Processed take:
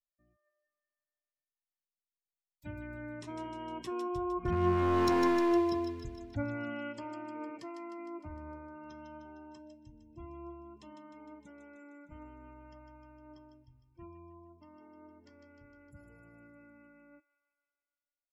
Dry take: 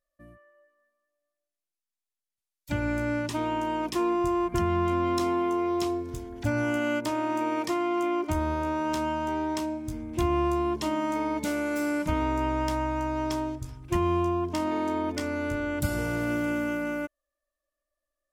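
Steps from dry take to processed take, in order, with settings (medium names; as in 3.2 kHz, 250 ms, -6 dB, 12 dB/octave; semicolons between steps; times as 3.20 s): Doppler pass-by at 5.20 s, 7 m/s, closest 1.8 m; spectral gate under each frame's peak -25 dB strong; bass shelf 180 Hz +3.5 dB; hard clipper -27 dBFS, distortion -11 dB; feedback echo behind a high-pass 153 ms, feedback 61%, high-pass 2.3 kHz, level -5.5 dB; flange 0.17 Hz, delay 1.9 ms, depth 8.9 ms, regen +81%; trim +7.5 dB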